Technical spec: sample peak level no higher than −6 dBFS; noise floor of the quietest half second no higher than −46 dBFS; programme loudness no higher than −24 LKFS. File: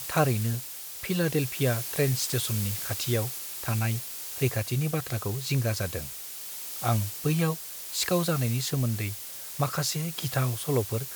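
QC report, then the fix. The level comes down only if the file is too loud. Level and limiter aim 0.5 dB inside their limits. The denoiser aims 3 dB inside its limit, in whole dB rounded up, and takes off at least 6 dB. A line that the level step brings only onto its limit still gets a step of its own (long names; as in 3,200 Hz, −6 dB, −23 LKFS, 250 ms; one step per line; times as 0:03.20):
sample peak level −11.0 dBFS: in spec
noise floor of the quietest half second −39 dBFS: out of spec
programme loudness −28.5 LKFS: in spec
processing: broadband denoise 10 dB, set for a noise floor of −39 dBFS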